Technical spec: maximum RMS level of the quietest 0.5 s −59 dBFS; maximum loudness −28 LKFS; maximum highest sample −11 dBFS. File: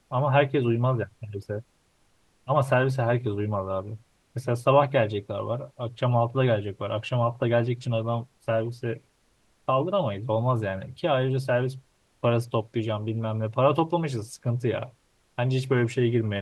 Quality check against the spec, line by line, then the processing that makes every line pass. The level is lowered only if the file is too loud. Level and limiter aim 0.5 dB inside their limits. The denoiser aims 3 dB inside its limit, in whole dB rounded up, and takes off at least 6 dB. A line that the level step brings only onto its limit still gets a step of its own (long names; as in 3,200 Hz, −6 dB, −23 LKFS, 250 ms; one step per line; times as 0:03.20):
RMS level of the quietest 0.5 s −66 dBFS: in spec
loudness −26.5 LKFS: out of spec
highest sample −7.5 dBFS: out of spec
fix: level −2 dB
brickwall limiter −11.5 dBFS